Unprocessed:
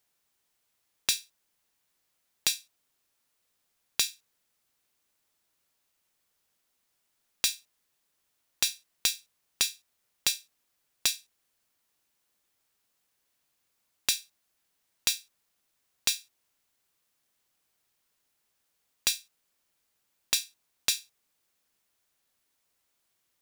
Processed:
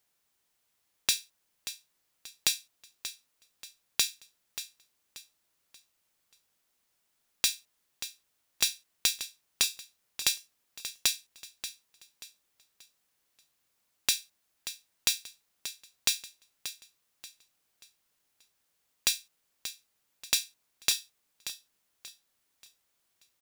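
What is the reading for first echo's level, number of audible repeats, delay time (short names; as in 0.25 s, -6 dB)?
-12.0 dB, 3, 0.583 s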